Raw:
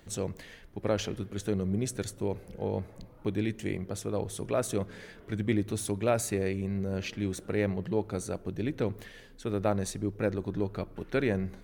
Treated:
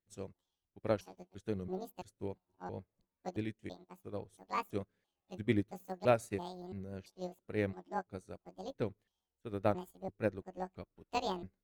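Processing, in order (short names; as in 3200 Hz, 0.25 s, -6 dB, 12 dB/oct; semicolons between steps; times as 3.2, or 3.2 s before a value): trilling pitch shifter +10.5 st, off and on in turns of 0.336 s; vibrato 4.8 Hz 38 cents; upward expander 2.5:1, over -48 dBFS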